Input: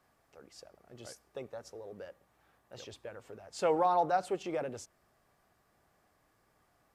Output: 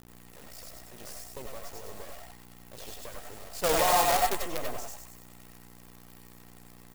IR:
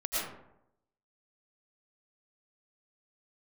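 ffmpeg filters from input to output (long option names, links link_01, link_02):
-filter_complex "[0:a]asplit=5[link_01][link_02][link_03][link_04][link_05];[link_02]adelay=102,afreqshift=140,volume=-7dB[link_06];[link_03]adelay=204,afreqshift=280,volume=-16.6dB[link_07];[link_04]adelay=306,afreqshift=420,volume=-26.3dB[link_08];[link_05]adelay=408,afreqshift=560,volume=-35.9dB[link_09];[link_01][link_06][link_07][link_08][link_09]amix=inputs=5:normalize=0,asplit=2[link_10][link_11];[link_11]volume=34dB,asoftclip=hard,volume=-34dB,volume=-3dB[link_12];[link_10][link_12]amix=inputs=2:normalize=0,aeval=exprs='val(0)+0.00355*(sin(2*PI*60*n/s)+sin(2*PI*2*60*n/s)/2+sin(2*PI*3*60*n/s)/3+sin(2*PI*4*60*n/s)/4+sin(2*PI*5*60*n/s)/5)':channel_layout=same,acrusher=bits=5:dc=4:mix=0:aa=0.000001,crystalizer=i=1:c=0[link_13];[1:a]atrim=start_sample=2205,atrim=end_sample=4410[link_14];[link_13][link_14]afir=irnorm=-1:irlink=0"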